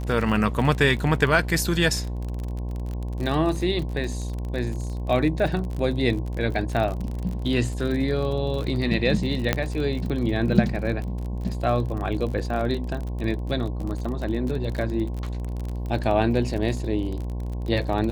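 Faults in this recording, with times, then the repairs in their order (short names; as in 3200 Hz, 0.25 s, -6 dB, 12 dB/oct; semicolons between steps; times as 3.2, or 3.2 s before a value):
buzz 60 Hz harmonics 18 -29 dBFS
crackle 39/s -29 dBFS
9.53 pop -6 dBFS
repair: de-click; de-hum 60 Hz, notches 18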